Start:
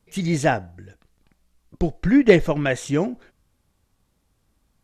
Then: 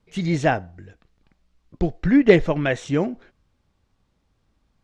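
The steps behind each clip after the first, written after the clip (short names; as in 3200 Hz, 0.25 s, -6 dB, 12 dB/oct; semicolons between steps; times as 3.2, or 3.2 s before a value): LPF 5100 Hz 12 dB/oct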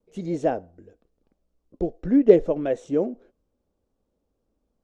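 graphic EQ 125/250/500/1000/2000/4000 Hz -8/+5/+11/-3/-9/-6 dB; vibrato 0.81 Hz 14 cents; gain -8.5 dB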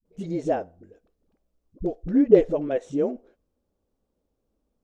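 dispersion highs, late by 53 ms, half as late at 300 Hz; gain -1 dB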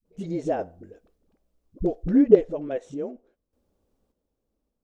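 random-step tremolo 1.7 Hz, depth 75%; in parallel at -3 dB: compressor, threshold -28 dBFS, peak gain reduction 18.5 dB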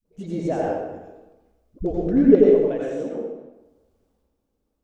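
reverb RT60 1.1 s, pre-delay 80 ms, DRR -4 dB; gain -1 dB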